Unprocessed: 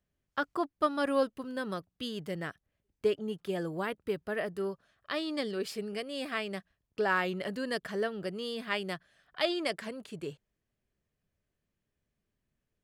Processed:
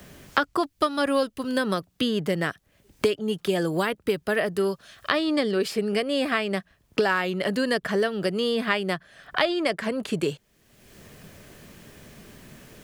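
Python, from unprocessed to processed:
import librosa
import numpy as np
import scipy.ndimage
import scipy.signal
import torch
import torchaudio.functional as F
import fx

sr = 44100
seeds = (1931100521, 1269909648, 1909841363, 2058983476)

y = fx.band_squash(x, sr, depth_pct=100)
y = y * librosa.db_to_amplitude(8.5)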